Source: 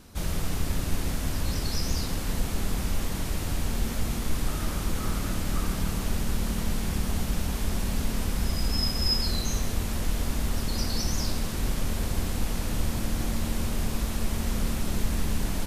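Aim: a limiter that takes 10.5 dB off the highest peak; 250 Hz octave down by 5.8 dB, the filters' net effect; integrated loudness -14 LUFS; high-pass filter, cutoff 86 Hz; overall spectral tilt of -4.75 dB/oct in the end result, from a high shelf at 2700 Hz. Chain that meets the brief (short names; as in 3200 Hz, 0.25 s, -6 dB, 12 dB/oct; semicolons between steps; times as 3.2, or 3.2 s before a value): HPF 86 Hz; bell 250 Hz -7.5 dB; high shelf 2700 Hz -8 dB; gain +26.5 dB; limiter -4.5 dBFS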